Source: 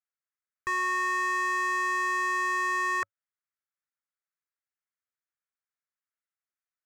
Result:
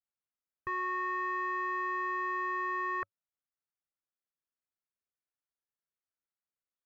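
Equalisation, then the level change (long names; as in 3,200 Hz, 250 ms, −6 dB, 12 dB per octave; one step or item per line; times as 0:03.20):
head-to-tape spacing loss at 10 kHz 44 dB
0.0 dB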